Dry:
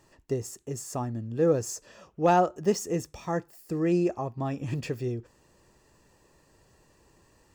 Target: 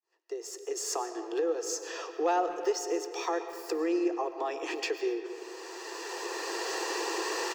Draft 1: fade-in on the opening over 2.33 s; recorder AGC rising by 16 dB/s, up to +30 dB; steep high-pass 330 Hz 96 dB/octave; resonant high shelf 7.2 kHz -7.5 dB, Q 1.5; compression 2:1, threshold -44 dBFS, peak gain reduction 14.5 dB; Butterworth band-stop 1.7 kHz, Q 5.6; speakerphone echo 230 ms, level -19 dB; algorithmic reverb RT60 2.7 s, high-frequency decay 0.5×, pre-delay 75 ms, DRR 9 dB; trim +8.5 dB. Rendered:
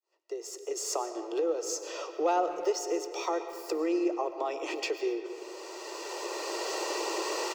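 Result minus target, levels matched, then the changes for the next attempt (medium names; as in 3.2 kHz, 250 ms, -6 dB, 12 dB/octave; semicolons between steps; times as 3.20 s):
2 kHz band -3.0 dB
change: Butterworth band-stop 590 Hz, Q 5.6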